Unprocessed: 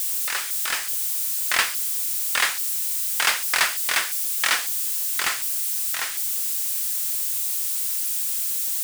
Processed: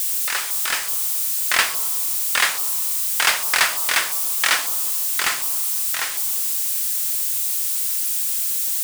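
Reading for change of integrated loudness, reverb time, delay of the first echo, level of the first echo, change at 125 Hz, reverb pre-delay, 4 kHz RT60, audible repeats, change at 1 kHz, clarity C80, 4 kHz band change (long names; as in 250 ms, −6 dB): +3.0 dB, 1.9 s, no echo audible, no echo audible, can't be measured, 27 ms, 1.8 s, no echo audible, +3.5 dB, 13.0 dB, +3.0 dB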